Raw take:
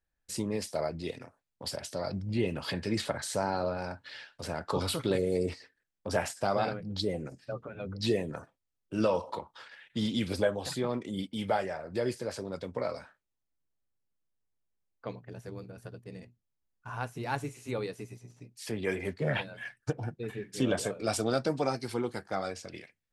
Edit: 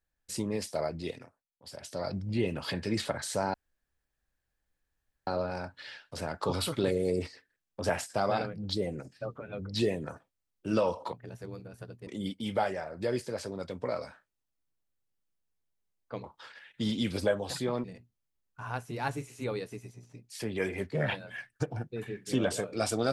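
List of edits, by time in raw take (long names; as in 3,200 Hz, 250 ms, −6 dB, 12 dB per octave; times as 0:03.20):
0:01.08–0:02.02: duck −18.5 dB, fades 0.41 s
0:03.54: splice in room tone 1.73 s
0:09.40–0:11.00: swap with 0:15.17–0:16.11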